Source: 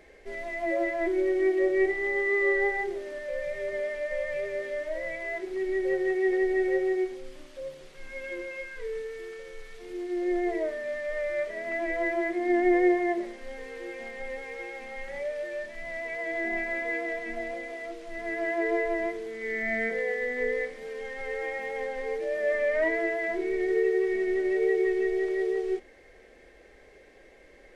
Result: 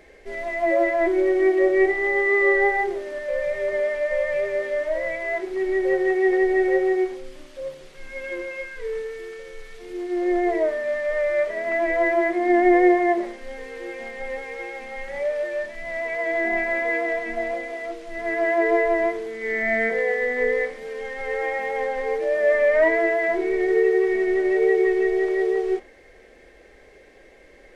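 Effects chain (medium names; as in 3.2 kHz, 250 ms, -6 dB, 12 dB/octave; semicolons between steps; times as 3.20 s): dynamic bell 920 Hz, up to +7 dB, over -42 dBFS, Q 0.86; trim +4 dB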